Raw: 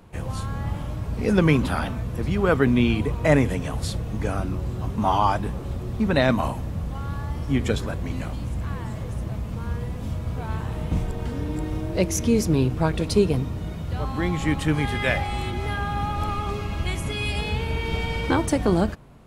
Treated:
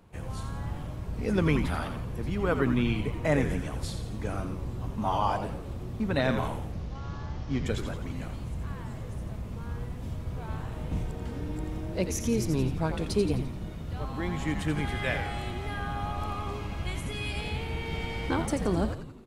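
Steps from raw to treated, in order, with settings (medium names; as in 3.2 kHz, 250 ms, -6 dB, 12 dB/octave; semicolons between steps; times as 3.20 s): 6.72–7.66 s: CVSD coder 32 kbps; frequency-shifting echo 86 ms, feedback 52%, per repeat -110 Hz, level -7.5 dB; trim -7.5 dB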